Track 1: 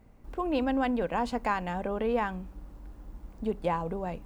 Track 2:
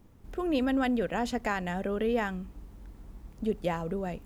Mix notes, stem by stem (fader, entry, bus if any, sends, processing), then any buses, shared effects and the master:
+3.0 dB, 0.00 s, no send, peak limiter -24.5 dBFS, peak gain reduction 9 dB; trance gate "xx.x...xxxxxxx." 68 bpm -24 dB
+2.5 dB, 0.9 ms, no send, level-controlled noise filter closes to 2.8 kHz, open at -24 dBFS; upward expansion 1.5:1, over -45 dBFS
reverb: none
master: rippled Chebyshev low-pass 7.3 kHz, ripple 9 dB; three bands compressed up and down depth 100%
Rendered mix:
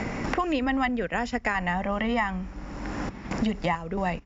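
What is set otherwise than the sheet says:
stem 1 +3.0 dB -> +12.5 dB; stem 2 +2.5 dB -> +10.0 dB

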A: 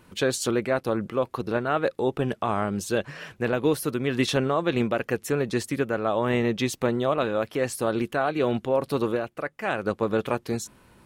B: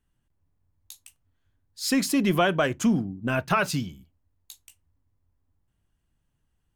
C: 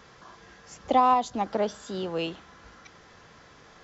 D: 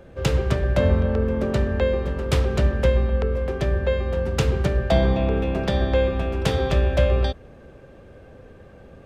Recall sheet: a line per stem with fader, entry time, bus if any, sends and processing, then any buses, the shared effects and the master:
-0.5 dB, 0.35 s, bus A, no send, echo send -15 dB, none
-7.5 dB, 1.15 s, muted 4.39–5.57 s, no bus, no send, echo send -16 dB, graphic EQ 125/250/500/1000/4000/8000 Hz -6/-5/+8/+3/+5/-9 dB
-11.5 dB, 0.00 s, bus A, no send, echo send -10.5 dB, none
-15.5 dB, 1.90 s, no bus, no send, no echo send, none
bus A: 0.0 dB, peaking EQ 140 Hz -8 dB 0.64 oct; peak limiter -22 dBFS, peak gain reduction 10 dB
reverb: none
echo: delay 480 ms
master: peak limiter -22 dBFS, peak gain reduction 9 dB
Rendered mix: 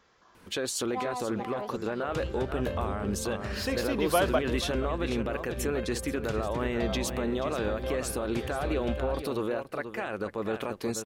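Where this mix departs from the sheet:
stem B: entry 1.15 s -> 1.75 s; master: missing peak limiter -22 dBFS, peak gain reduction 9 dB

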